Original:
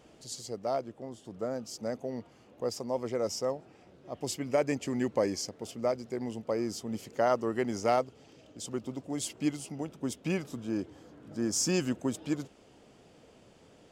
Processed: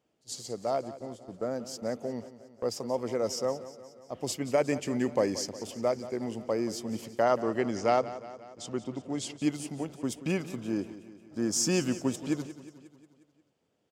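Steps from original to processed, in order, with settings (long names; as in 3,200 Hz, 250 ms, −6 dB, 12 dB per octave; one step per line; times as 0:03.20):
high-pass filter 80 Hz 12 dB per octave
noise gate −45 dBFS, range −20 dB
0:07.22–0:09.40: low-pass filter 6,400 Hz 12 dB per octave
repeating echo 179 ms, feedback 58%, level −15 dB
level +1.5 dB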